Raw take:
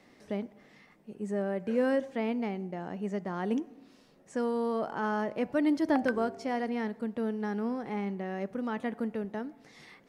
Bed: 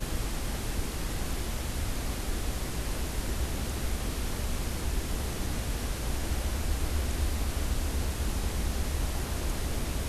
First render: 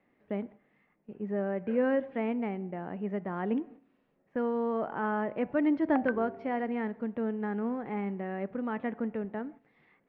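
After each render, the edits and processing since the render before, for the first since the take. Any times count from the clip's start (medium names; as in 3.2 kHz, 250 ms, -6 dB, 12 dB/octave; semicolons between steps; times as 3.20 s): low-pass 2.6 kHz 24 dB/octave; gate -48 dBFS, range -11 dB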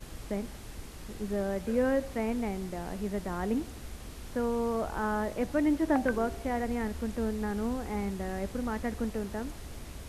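add bed -11.5 dB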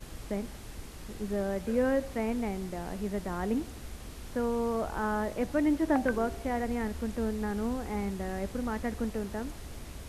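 no audible change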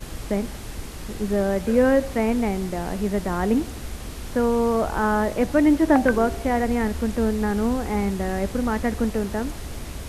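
trim +9.5 dB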